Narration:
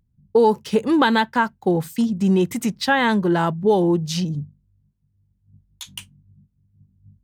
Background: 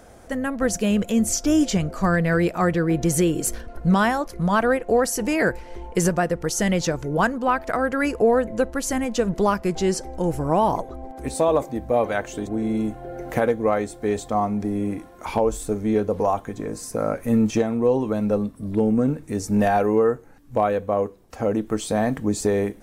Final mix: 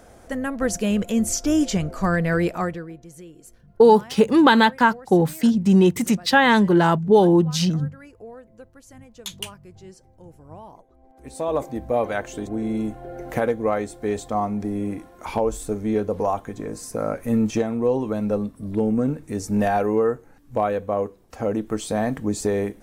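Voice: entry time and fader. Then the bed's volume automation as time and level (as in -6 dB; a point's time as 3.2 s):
3.45 s, +2.5 dB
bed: 2.56 s -1 dB
3.04 s -23 dB
10.88 s -23 dB
11.62 s -1.5 dB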